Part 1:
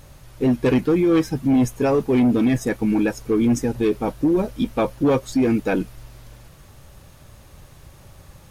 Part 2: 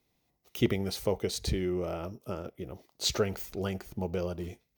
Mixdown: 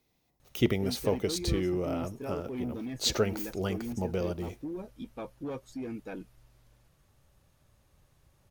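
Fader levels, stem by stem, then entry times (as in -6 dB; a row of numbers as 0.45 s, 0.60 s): -19.5 dB, +1.0 dB; 0.40 s, 0.00 s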